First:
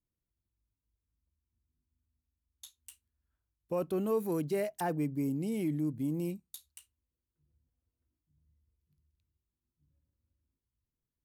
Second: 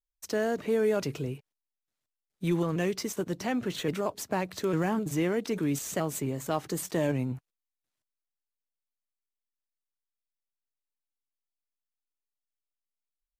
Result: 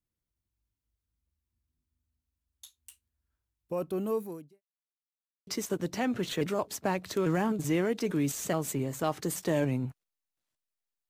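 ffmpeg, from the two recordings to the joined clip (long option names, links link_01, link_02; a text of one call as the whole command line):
ffmpeg -i cue0.wav -i cue1.wav -filter_complex "[0:a]apad=whole_dur=11.09,atrim=end=11.09,asplit=2[link_01][link_02];[link_01]atrim=end=4.62,asetpts=PTS-STARTPTS,afade=type=out:start_time=4.15:duration=0.47:curve=qua[link_03];[link_02]atrim=start=4.62:end=5.47,asetpts=PTS-STARTPTS,volume=0[link_04];[1:a]atrim=start=2.94:end=8.56,asetpts=PTS-STARTPTS,afade=type=in:duration=0.004:curve=hsin[link_05];[link_03][link_04][link_05]concat=n=3:v=0:a=1" out.wav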